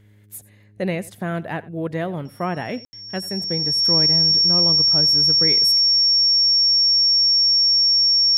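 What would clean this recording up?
hum removal 103.9 Hz, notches 4
notch filter 5,500 Hz, Q 30
ambience match 0:02.85–0:02.93
echo removal 89 ms −20.5 dB

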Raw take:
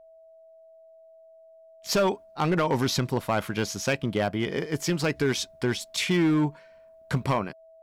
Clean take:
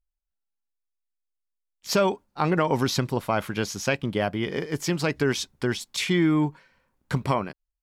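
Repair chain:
clipped peaks rebuilt −17.5 dBFS
notch filter 650 Hz, Q 30

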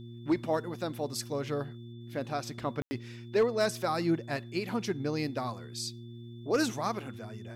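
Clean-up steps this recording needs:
clipped peaks rebuilt −19 dBFS
hum removal 117.7 Hz, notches 3
notch filter 3,500 Hz, Q 30
ambience match 0:02.82–0:02.91

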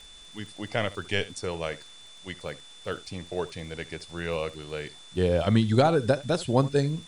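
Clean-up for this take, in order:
click removal
notch filter 3,500 Hz, Q 30
noise reduction from a noise print 23 dB
echo removal 72 ms −18.5 dB

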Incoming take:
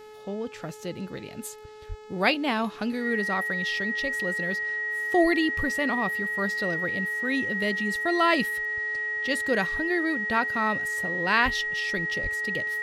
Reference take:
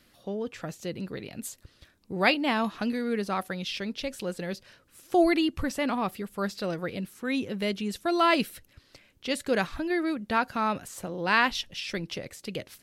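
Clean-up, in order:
hum removal 427.8 Hz, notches 19
notch filter 1,900 Hz, Q 30
0:01.88–0:02.00: high-pass filter 140 Hz 24 dB per octave
0:11.44–0:11.56: high-pass filter 140 Hz 24 dB per octave
0:12.22–0:12.34: high-pass filter 140 Hz 24 dB per octave

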